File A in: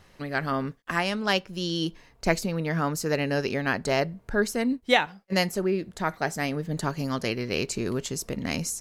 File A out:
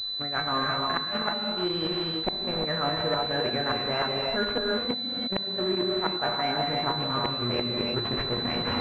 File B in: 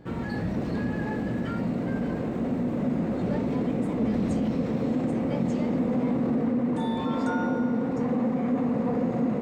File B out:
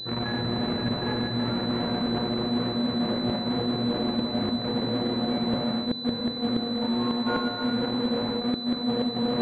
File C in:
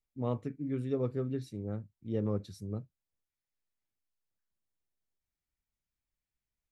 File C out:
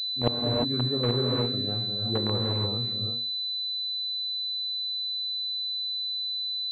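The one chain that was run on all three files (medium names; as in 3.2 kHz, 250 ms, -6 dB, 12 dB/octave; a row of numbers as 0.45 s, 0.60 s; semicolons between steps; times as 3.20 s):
feedback comb 120 Hz, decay 0.35 s, harmonics all, mix 90%; inverted gate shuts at -25 dBFS, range -35 dB; in parallel at -6 dB: bit crusher 6-bit; on the sum: gated-style reverb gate 380 ms rising, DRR 1.5 dB; reverse; compression, threshold -36 dBFS; reverse; bass shelf 340 Hz -5 dB; class-D stage that switches slowly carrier 4 kHz; normalise loudness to -27 LUFS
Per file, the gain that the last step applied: +13.5 dB, +15.0 dB, +18.0 dB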